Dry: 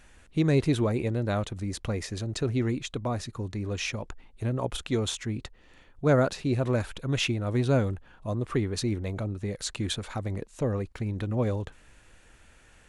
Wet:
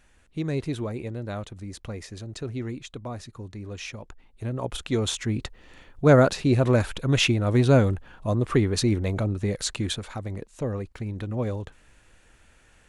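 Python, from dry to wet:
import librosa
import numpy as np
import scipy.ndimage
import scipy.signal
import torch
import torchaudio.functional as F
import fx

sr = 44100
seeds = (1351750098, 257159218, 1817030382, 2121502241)

y = fx.gain(x, sr, db=fx.line((4.06, -5.0), (5.41, 6.0), (9.55, 6.0), (10.14, -1.0)))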